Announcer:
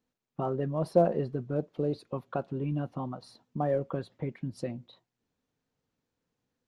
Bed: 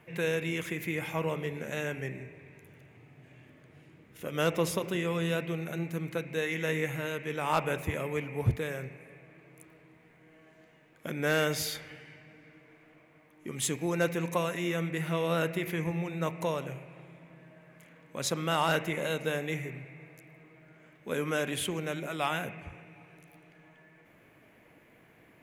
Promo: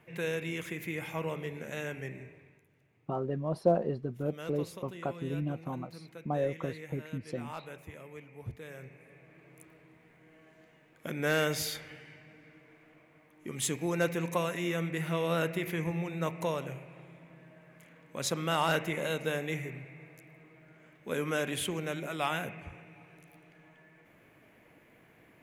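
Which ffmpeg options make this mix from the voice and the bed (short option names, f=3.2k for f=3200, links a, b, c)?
-filter_complex "[0:a]adelay=2700,volume=-2.5dB[a];[1:a]volume=10dB,afade=t=out:st=2.28:d=0.39:silence=0.281838,afade=t=in:st=8.55:d=0.96:silence=0.211349[b];[a][b]amix=inputs=2:normalize=0"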